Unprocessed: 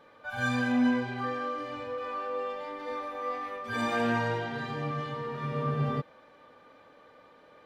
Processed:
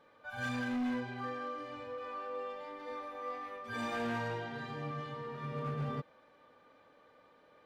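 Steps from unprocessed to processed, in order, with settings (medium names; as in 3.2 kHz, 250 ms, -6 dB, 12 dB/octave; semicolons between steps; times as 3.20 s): overload inside the chain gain 24.5 dB; trim -7 dB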